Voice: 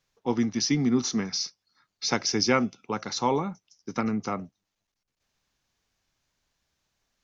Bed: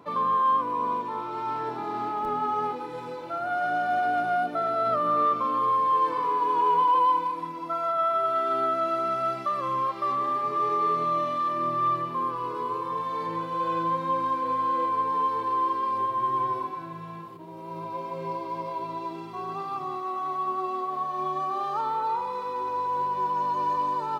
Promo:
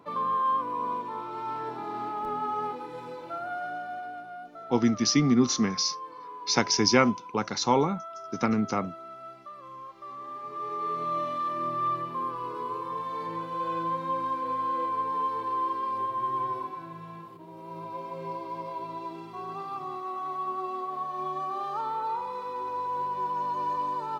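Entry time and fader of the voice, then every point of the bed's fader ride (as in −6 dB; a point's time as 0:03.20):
4.45 s, +2.0 dB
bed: 0:03.33 −3.5 dB
0:04.31 −16.5 dB
0:09.94 −16.5 dB
0:11.18 −3.5 dB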